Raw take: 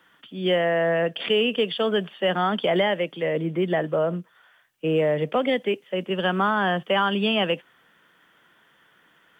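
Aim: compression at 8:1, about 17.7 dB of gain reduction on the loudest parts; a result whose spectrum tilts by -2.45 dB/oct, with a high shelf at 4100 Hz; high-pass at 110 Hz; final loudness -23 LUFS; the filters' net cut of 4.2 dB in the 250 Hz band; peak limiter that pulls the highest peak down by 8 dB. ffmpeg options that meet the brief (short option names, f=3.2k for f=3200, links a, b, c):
-af "highpass=110,equalizer=f=250:t=o:g=-6,highshelf=f=4.1k:g=9,acompressor=threshold=-37dB:ratio=8,volume=19dB,alimiter=limit=-13.5dB:level=0:latency=1"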